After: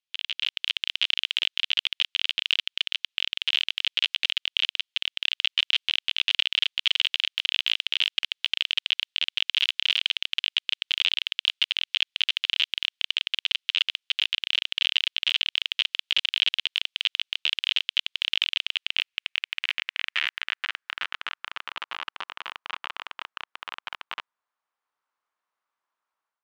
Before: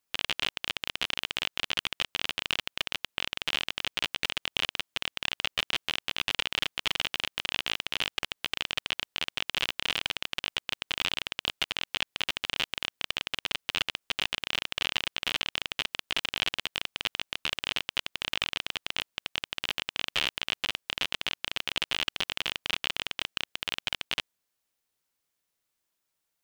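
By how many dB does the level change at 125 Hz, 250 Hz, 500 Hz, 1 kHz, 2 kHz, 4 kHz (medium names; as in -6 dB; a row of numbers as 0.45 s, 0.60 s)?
under -20 dB, under -15 dB, under -10 dB, -3.0 dB, +3.0 dB, +6.0 dB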